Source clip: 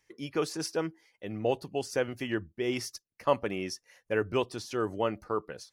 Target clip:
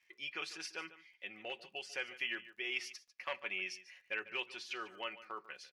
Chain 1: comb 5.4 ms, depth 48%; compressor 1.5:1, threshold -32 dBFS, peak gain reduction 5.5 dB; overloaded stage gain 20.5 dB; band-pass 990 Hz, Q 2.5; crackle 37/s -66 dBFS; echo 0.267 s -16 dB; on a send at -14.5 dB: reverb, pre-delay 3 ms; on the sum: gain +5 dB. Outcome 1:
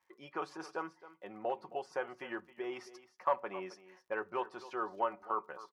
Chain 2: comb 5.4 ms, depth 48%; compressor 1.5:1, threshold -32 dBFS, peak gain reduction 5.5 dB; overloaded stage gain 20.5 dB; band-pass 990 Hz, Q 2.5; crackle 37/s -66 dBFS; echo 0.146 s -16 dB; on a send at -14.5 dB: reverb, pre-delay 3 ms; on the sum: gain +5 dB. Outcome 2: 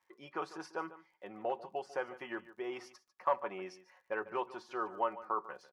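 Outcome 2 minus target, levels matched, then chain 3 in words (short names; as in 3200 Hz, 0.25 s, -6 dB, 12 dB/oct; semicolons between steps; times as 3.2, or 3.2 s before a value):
1000 Hz band +9.5 dB
comb 5.4 ms, depth 48%; compressor 1.5:1, threshold -32 dBFS, peak gain reduction 5.5 dB; overloaded stage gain 20.5 dB; band-pass 2500 Hz, Q 2.5; crackle 37/s -66 dBFS; echo 0.146 s -16 dB; on a send at -14.5 dB: reverb, pre-delay 3 ms; on the sum: gain +5 dB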